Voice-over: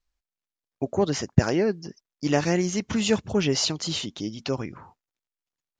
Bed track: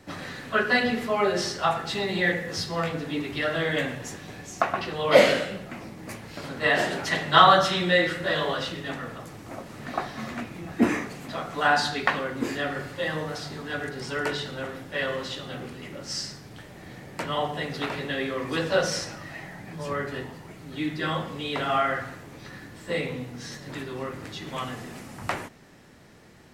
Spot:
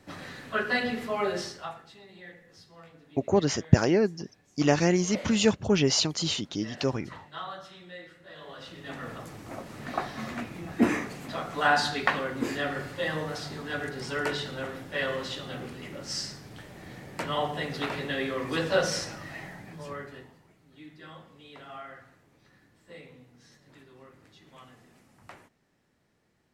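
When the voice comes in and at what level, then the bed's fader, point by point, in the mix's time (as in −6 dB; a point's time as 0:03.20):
2.35 s, 0.0 dB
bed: 0:01.35 −5 dB
0:01.98 −23.5 dB
0:08.26 −23.5 dB
0:09.10 −1.5 dB
0:19.47 −1.5 dB
0:20.61 −19 dB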